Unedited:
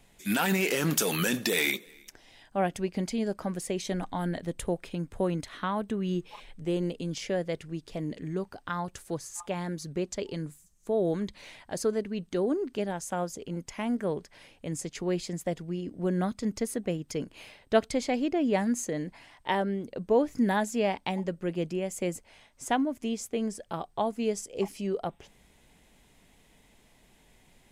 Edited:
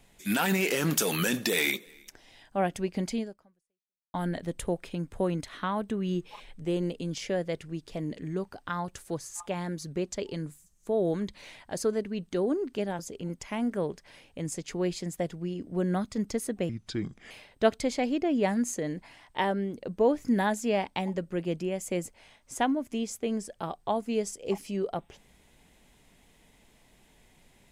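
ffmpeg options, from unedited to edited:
-filter_complex "[0:a]asplit=5[a][b][c][d][e];[a]atrim=end=4.14,asetpts=PTS-STARTPTS,afade=t=out:st=3.18:d=0.96:c=exp[f];[b]atrim=start=4.14:end=12.992,asetpts=PTS-STARTPTS,afade=t=in:d=0.004:c=hsin[g];[c]atrim=start=13.258:end=16.964[h];[d]atrim=start=16.96:end=17.41,asetpts=PTS-STARTPTS,asetrate=32193,aresample=44100[i];[e]atrim=start=17.406[j];[f][g]concat=n=2:v=0:a=1[k];[k][h]acrossfade=d=0.004:c1=hsin:c2=hsin[l];[l][i]acrossfade=d=0.004:c1=hsin:c2=hsin[m];[m][j]acrossfade=d=0.004:c1=hsin:c2=hsin"

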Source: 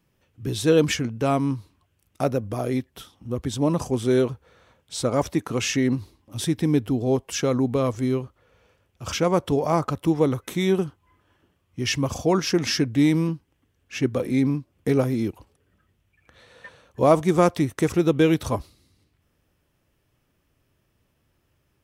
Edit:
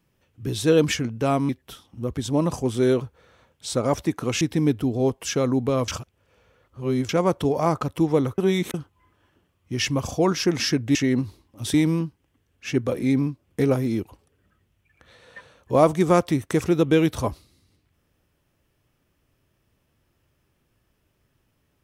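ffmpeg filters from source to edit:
-filter_complex "[0:a]asplit=9[a][b][c][d][e][f][g][h][i];[a]atrim=end=1.492[j];[b]atrim=start=2.768:end=5.692[k];[c]atrim=start=6.478:end=7.952[l];[d]atrim=start=7.948:end=9.162,asetpts=PTS-STARTPTS,areverse[m];[e]atrim=start=9.158:end=10.452[n];[f]atrim=start=10.448:end=10.812,asetpts=PTS-STARTPTS,areverse[o];[g]atrim=start=10.808:end=13.022[p];[h]atrim=start=5.688:end=6.482[q];[i]atrim=start=13.018[r];[j][k]acrossfade=d=0.004:c1=hsin:c2=hsin[s];[s][l]acrossfade=d=0.004:c1=hsin:c2=hsin[t];[t][m]acrossfade=d=0.004:c1=hsin:c2=hsin[u];[u][n]acrossfade=d=0.004:c1=hsin:c2=hsin[v];[v][o]acrossfade=d=0.004:c1=hsin:c2=hsin[w];[w][p]acrossfade=d=0.004:c1=hsin:c2=hsin[x];[x][q]acrossfade=d=0.004:c1=hsin:c2=hsin[y];[y][r]acrossfade=d=0.004:c1=hsin:c2=hsin"

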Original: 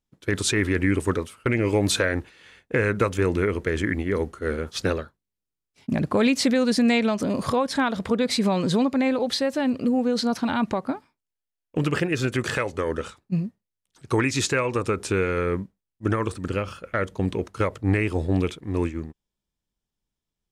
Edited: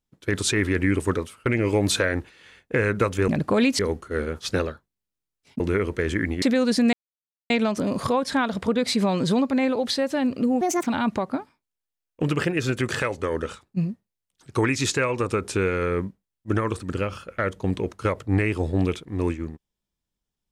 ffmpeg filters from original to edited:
-filter_complex "[0:a]asplit=8[a][b][c][d][e][f][g][h];[a]atrim=end=3.282[i];[b]atrim=start=5.908:end=6.422[j];[c]atrim=start=4.098:end=5.912[k];[d]atrim=start=3.278:end=4.102[l];[e]atrim=start=6.418:end=6.93,asetpts=PTS-STARTPTS,afade=t=out:st=0.508:d=0.004:c=hsin,apad=pad_dur=0.57[m];[f]atrim=start=6.93:end=10.044,asetpts=PTS-STARTPTS,afade=t=in:d=0.004:c=hsin[n];[g]atrim=start=10.04:end=10.42,asetpts=PTS-STARTPTS,asetrate=65268,aresample=44100[o];[h]atrim=start=10.416[p];[i][j]acrossfade=d=0.004:c1=hsin:c2=hsin[q];[q][k]acrossfade=d=0.004:c1=hsin:c2=hsin[r];[r][l]acrossfade=d=0.004:c1=hsin:c2=hsin[s];[m][n]concat=n=2:v=0:a=1[t];[s][t]acrossfade=d=0.004:c1=hsin:c2=hsin[u];[u][o]acrossfade=d=0.004:c1=hsin:c2=hsin[v];[v][p]acrossfade=d=0.004:c1=hsin:c2=hsin"

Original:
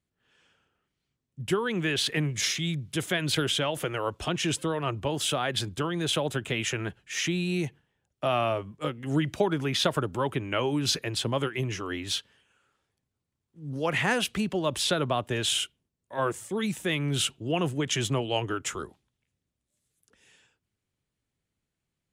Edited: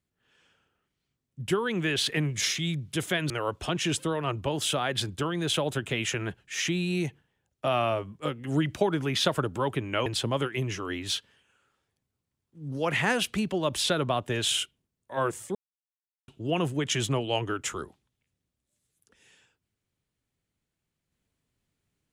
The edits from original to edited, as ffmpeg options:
-filter_complex "[0:a]asplit=5[a][b][c][d][e];[a]atrim=end=3.302[f];[b]atrim=start=3.888:end=10.652[g];[c]atrim=start=11.068:end=16.56,asetpts=PTS-STARTPTS,afade=t=out:st=5.488:d=0.004:c=hsin[h];[d]atrim=start=16.56:end=17.29,asetpts=PTS-STARTPTS,volume=0[i];[e]atrim=start=17.29,asetpts=PTS-STARTPTS,afade=t=in:d=0.004:c=hsin[j];[f][g]acrossfade=d=0.004:c1=hsin:c2=hsin[k];[h][i][j]concat=n=3:v=0:a=1[l];[k][l]acrossfade=d=0.004:c1=hsin:c2=hsin"

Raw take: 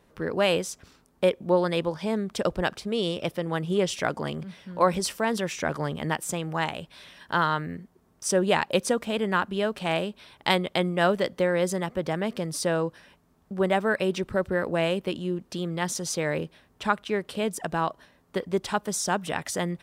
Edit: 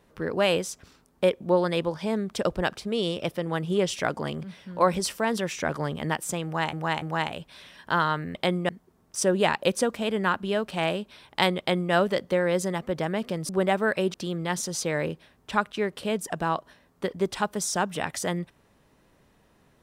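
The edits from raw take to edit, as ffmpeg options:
-filter_complex "[0:a]asplit=7[a][b][c][d][e][f][g];[a]atrim=end=6.732[h];[b]atrim=start=6.438:end=6.732[i];[c]atrim=start=6.438:end=7.772[j];[d]atrim=start=10.668:end=11.012[k];[e]atrim=start=7.768:end=12.572[l];[f]atrim=start=13.518:end=14.172[m];[g]atrim=start=15.458[n];[h][i]acrossfade=d=0.004:c1=hsin:c2=hsin[o];[o][j]acrossfade=d=0.004:c1=hsin:c2=hsin[p];[p][k]acrossfade=d=0.004:c1=hsin:c2=hsin[q];[q][l]acrossfade=d=0.004:c1=hsin:c2=hsin[r];[r][m]acrossfade=d=0.004:c1=hsin:c2=hsin[s];[s][n]acrossfade=d=0.004:c1=hsin:c2=hsin"

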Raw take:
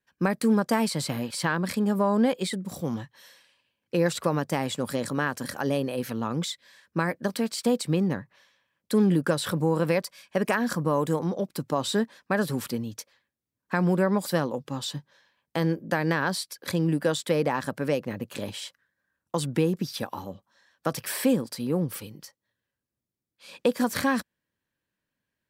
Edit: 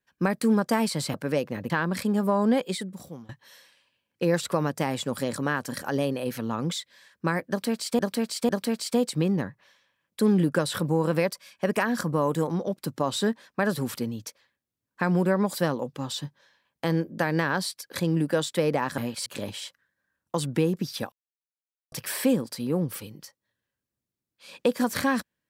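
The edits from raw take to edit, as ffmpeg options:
-filter_complex "[0:a]asplit=10[a][b][c][d][e][f][g][h][i][j];[a]atrim=end=1.142[k];[b]atrim=start=17.698:end=18.262[l];[c]atrim=start=1.418:end=3.01,asetpts=PTS-STARTPTS,afade=t=out:st=0.942:d=0.65:silence=0.0749894[m];[d]atrim=start=3.01:end=7.712,asetpts=PTS-STARTPTS,afade=t=in:d=0.004:c=hsin:silence=0.0749894[n];[e]atrim=start=7.208:end=7.712[o];[f]atrim=start=7.208:end=17.702[p];[g]atrim=start=1.138:end=1.422[q];[h]atrim=start=18.258:end=20.12,asetpts=PTS-STARTPTS,afade=t=out:st=1.858:d=0.004:c=hsin[r];[i]atrim=start=20.12:end=20.92,asetpts=PTS-STARTPTS,volume=0[s];[j]atrim=start=20.92,asetpts=PTS-STARTPTS,afade=t=in:d=0.004:c=hsin[t];[k][l]acrossfade=d=0.004:c1=hsin:c2=hsin[u];[m][n]concat=n=2:v=0:a=1[v];[u][v]acrossfade=d=0.004:c1=hsin:c2=hsin[w];[w][o]acrossfade=d=0.004:c1=hsin:c2=hsin[x];[x][p]acrossfade=d=0.004:c1=hsin:c2=hsin[y];[y][q]acrossfade=d=0.004:c1=hsin:c2=hsin[z];[r][s][t]concat=n=3:v=0:a=1[aa];[z][aa]acrossfade=d=0.004:c1=hsin:c2=hsin"

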